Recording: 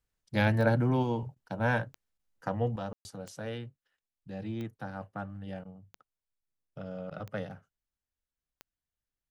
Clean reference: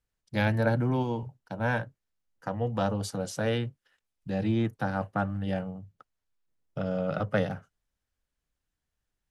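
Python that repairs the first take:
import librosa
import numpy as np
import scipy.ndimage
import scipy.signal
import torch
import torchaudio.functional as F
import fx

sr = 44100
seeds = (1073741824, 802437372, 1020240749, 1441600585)

y = fx.fix_declick_ar(x, sr, threshold=10.0)
y = fx.fix_ambience(y, sr, seeds[0], print_start_s=6.26, print_end_s=6.76, start_s=2.93, end_s=3.05)
y = fx.fix_interpolate(y, sr, at_s=(1.35, 2.18, 5.64, 6.41, 7.1), length_ms=11.0)
y = fx.fix_level(y, sr, at_s=2.76, step_db=10.0)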